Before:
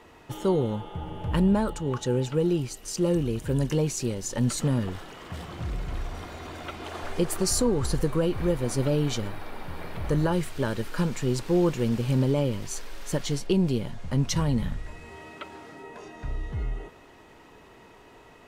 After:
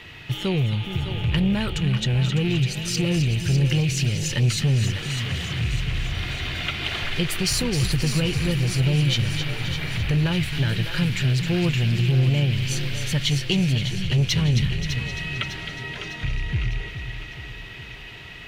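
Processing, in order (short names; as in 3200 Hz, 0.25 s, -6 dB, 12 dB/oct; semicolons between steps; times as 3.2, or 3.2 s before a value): rattling part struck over -29 dBFS, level -35 dBFS; ten-band EQ 125 Hz +11 dB, 250 Hz -5 dB, 500 Hz -6 dB, 1000 Hz -8 dB, 2000 Hz +7 dB, 4000 Hz +6 dB, 8000 Hz -5 dB; in parallel at +2.5 dB: compressor, threshold -33 dBFS, peak gain reduction 18.5 dB; on the sum: thin delay 0.263 s, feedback 51%, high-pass 1600 Hz, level -7.5 dB; soft clip -15 dBFS, distortion -15 dB; bell 2900 Hz +6.5 dB 0.71 oct; on a send: split-band echo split 350 Hz, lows 0.418 s, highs 0.603 s, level -9 dB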